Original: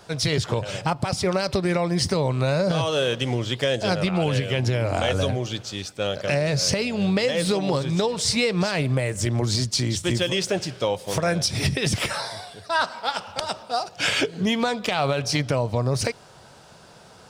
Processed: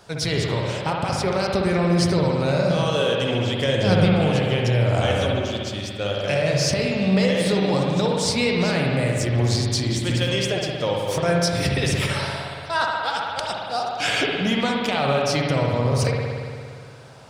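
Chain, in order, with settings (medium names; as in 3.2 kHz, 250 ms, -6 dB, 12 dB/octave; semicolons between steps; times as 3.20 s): 3.68–4.13 s: bass shelf 190 Hz +11.5 dB; spring tank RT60 2.2 s, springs 58 ms, chirp 20 ms, DRR -1 dB; trim -1.5 dB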